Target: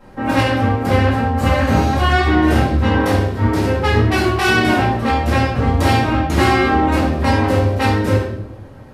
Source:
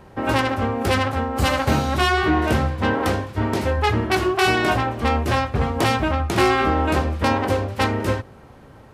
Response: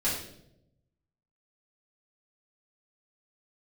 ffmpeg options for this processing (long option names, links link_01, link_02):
-filter_complex "[0:a]asettb=1/sr,asplit=3[link_01][link_02][link_03];[link_01]atrim=end=0.524[link_04];[link_02]atrim=start=0.52:end=2.1,asetpts=PTS-STARTPTS,afade=type=in:duration=0.004:curve=qsin,afade=type=out:start_time=1.576:duration=0.004:curve=qsin,acrossover=split=2500[link_05][link_06];[link_06]acompressor=threshold=-33dB:ratio=4:attack=1:release=60[link_07];[link_05][link_07]amix=inputs=2:normalize=0[link_08];[link_03]atrim=start=2.096[link_09];[link_04][link_08]acrossfade=duration=0.004:curve1=hsin:curve2=qsin[link_10];[link_10][link_09]acrossfade=duration=0.004:curve1=qsin:curve2=hsin[link_11];[1:a]atrim=start_sample=2205[link_12];[link_11][link_12]afir=irnorm=-1:irlink=0,volume=-5dB"